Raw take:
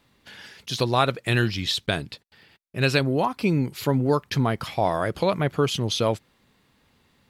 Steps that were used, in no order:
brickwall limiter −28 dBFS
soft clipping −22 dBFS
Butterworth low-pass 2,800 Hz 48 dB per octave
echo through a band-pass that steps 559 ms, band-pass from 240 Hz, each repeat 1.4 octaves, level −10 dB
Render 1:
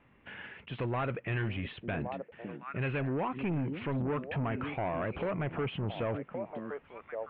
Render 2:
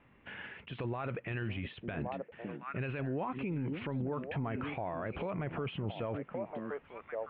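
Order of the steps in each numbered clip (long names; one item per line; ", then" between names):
echo through a band-pass that steps, then soft clipping, then brickwall limiter, then Butterworth low-pass
echo through a band-pass that steps, then brickwall limiter, then soft clipping, then Butterworth low-pass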